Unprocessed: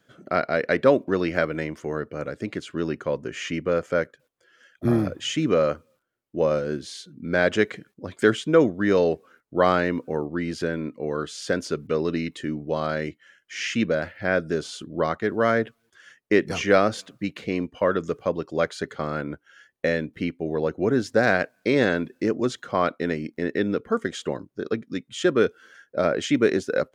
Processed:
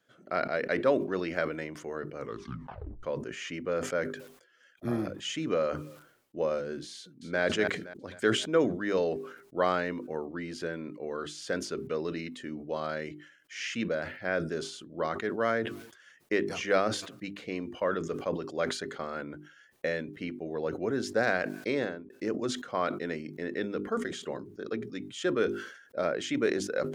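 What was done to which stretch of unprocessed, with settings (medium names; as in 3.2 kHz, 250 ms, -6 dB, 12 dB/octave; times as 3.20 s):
2.16 s: tape stop 0.87 s
6.95–7.41 s: echo throw 260 ms, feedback 40%, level -8 dB
21.68–22.10 s: studio fade out
23.93–24.95 s: hum notches 60/120/180/240/300/360/420 Hz
whole clip: bass shelf 170 Hz -7.5 dB; hum notches 50/100/150/200/250/300/350/400 Hz; decay stretcher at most 81 dB/s; trim -7 dB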